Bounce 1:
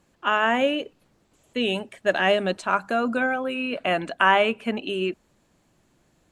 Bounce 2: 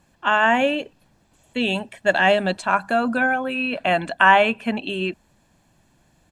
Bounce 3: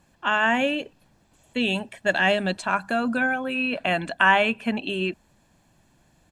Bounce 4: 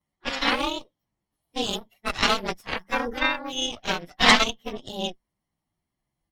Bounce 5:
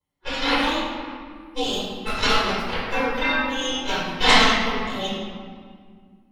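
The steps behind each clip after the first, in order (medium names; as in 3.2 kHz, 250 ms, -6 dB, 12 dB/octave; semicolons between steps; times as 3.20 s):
comb 1.2 ms, depth 43%; trim +3 dB
dynamic bell 770 Hz, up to -5 dB, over -28 dBFS, Q 0.82; trim -1 dB
frequency axis rescaled in octaves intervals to 109%; spectral noise reduction 6 dB; Chebyshev shaper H 3 -11 dB, 4 -6 dB, 6 -23 dB, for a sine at -8.5 dBFS; trim +4.5 dB
reverberation RT60 2.0 s, pre-delay 4 ms, DRR -6 dB; trim -6.5 dB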